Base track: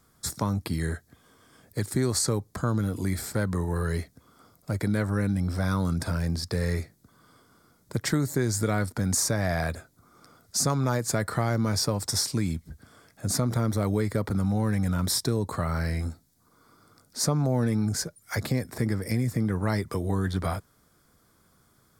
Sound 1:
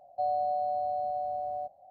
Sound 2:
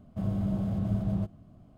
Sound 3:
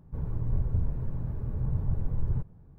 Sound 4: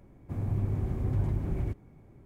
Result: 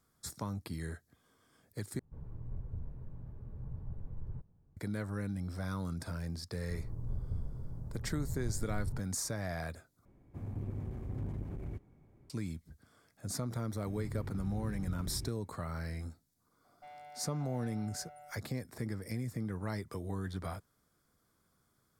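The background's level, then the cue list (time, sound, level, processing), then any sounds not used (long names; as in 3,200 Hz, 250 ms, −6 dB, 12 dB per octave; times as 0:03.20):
base track −11.5 dB
0:01.99: overwrite with 3 −14 dB
0:06.57: mix in 3 −10 dB + low-pass filter 1,300 Hz
0:10.05: overwrite with 4 −8 dB + saturating transformer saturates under 150 Hz
0:13.56: mix in 4 −10.5 dB + parametric band 670 Hz −11.5 dB 1.1 octaves
0:16.64: mix in 1 −15.5 dB + tube saturation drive 34 dB, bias 0.4
not used: 2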